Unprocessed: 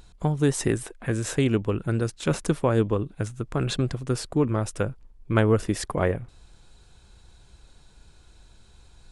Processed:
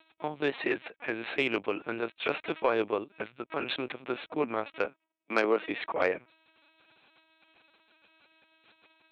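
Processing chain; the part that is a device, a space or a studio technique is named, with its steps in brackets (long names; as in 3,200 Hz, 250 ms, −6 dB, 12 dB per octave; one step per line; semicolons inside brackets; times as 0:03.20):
talking toy (linear-prediction vocoder at 8 kHz pitch kept; high-pass filter 460 Hz 12 dB per octave; parametric band 2,400 Hz +9.5 dB 0.38 octaves; soft clipping −12 dBFS, distortion −21 dB)
0:04.86–0:05.69: Butterworth high-pass 160 Hz 36 dB per octave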